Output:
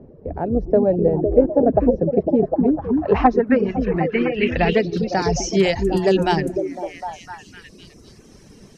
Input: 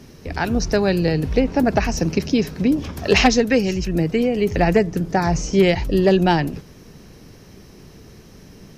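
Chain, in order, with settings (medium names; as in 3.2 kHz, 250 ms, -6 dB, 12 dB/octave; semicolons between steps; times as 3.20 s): repeats whose band climbs or falls 253 ms, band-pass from 280 Hz, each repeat 0.7 oct, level -1 dB; low-pass sweep 570 Hz -> 8.8 kHz, 2.43–5.99 s; reverb removal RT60 0.86 s; trim -1.5 dB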